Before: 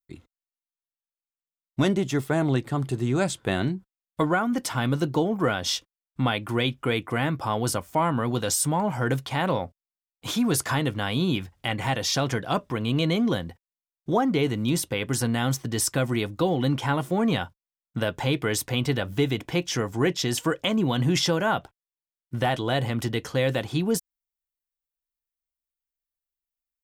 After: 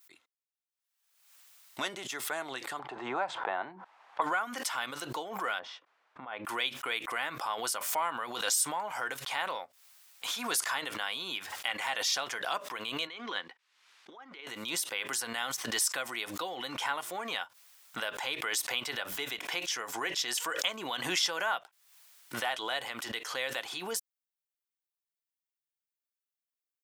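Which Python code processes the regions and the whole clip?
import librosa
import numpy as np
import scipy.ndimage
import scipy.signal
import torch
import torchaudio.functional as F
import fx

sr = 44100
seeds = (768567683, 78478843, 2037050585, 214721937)

y = fx.chain(x, sr, fx.lowpass(hz=1600.0, slope=12),
    fx.peak_eq(hz=840.0, db=12.5, octaves=0.81),
    fx.band_squash(depth_pct=70), at=(2.79, 4.22))
y = fx.chain(y, sr, fx.lowpass(hz=1200.0, slope=12),
    fx.over_compress(threshold_db=-30.0, ratio=-0.5), at=(5.59, 6.45))
y = fx.chain(y, sr, fx.bandpass_edges(low_hz=240.0, high_hz=3600.0),
    fx.peak_eq(hz=630.0, db=-8.0, octaves=0.66),
    fx.over_compress(threshold_db=-32.0, ratio=-0.5), at=(13.07, 14.47))
y = scipy.signal.sosfilt(scipy.signal.butter(2, 980.0, 'highpass', fs=sr, output='sos'), y)
y = fx.pre_swell(y, sr, db_per_s=57.0)
y = F.gain(torch.from_numpy(y), -3.5).numpy()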